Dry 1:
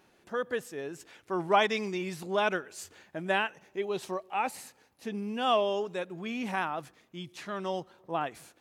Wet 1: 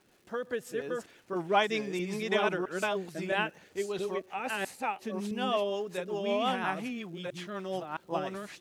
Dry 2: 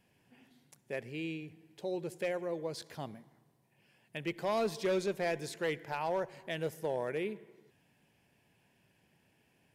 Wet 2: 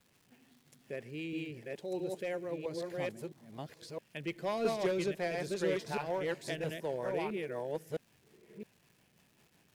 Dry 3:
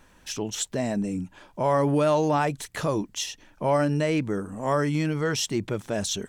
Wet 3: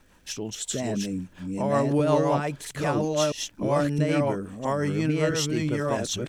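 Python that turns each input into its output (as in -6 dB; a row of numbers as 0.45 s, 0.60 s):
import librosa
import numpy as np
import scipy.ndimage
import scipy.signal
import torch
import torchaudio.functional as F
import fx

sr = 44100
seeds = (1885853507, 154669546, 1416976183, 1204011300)

y = fx.reverse_delay(x, sr, ms=664, wet_db=-1)
y = fx.rotary(y, sr, hz=5.5)
y = fx.dmg_crackle(y, sr, seeds[0], per_s=470.0, level_db=-56.0)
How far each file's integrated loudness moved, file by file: -1.0 LU, -0.5 LU, 0.0 LU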